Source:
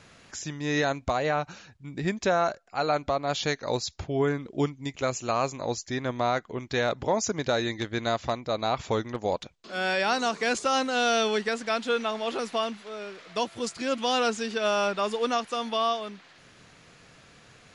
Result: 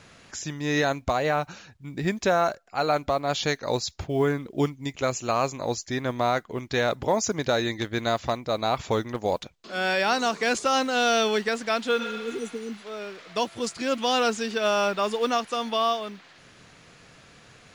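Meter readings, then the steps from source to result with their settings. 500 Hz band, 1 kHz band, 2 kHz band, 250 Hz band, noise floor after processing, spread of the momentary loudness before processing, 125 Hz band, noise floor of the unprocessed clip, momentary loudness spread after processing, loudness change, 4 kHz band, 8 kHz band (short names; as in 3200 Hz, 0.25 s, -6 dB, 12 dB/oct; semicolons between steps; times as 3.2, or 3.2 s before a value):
+2.0 dB, +2.0 dB, +2.0 dB, +2.0 dB, -53 dBFS, 8 LU, +2.0 dB, -55 dBFS, 10 LU, +2.0 dB, +2.0 dB, +2.0 dB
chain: spectral repair 12.02–12.71, 480–5800 Hz both; modulation noise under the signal 35 dB; gain +2 dB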